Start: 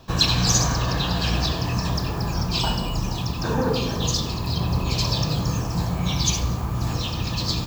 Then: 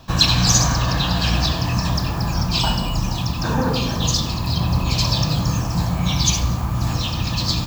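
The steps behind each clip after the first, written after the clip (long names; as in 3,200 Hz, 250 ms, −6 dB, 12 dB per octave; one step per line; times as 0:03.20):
parametric band 420 Hz −9 dB 0.46 octaves
level +4 dB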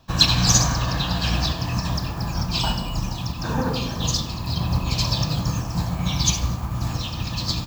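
expander for the loud parts 1.5 to 1, over −32 dBFS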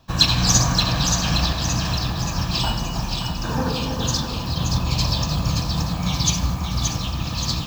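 echo with a time of its own for lows and highs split 970 Hz, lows 322 ms, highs 575 ms, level −5 dB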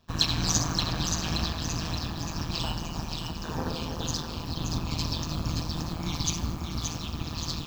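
amplitude modulation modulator 160 Hz, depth 80%
level −5 dB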